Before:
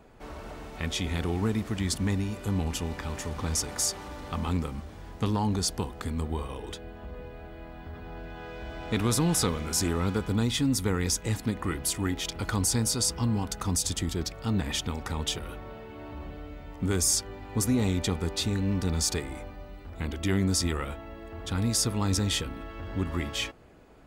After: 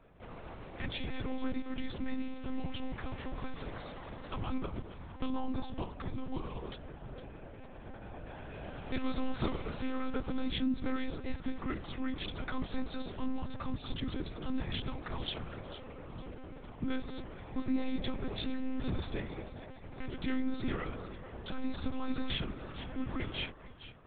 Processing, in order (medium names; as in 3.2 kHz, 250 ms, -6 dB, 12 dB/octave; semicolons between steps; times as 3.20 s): on a send: echo whose repeats swap between lows and highs 227 ms, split 1.2 kHz, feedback 58%, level -9 dB; on the sum: monotone LPC vocoder at 8 kHz 260 Hz; trim -6 dB